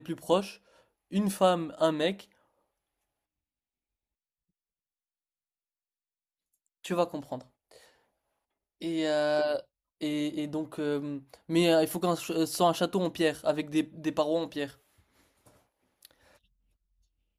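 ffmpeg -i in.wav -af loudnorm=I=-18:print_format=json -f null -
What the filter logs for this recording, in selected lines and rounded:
"input_i" : "-29.7",
"input_tp" : "-10.8",
"input_lra" : "17.2",
"input_thresh" : "-41.6",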